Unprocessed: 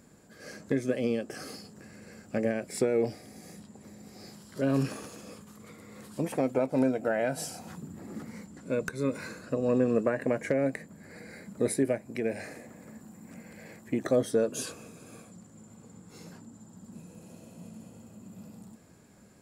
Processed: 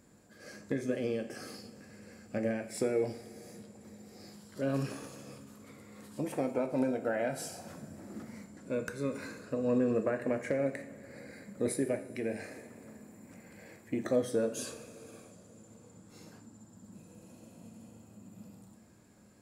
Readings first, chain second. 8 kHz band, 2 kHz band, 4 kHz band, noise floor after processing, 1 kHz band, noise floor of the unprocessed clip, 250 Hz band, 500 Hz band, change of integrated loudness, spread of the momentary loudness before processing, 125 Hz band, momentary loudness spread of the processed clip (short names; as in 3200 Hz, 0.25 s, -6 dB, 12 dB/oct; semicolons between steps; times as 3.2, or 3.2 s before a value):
-4.0 dB, -4.0 dB, -4.0 dB, -58 dBFS, -4.0 dB, -55 dBFS, -4.0 dB, -4.0 dB, -4.0 dB, 22 LU, -5.0 dB, 22 LU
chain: two-slope reverb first 0.53 s, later 4.5 s, from -18 dB, DRR 6 dB; gain -5 dB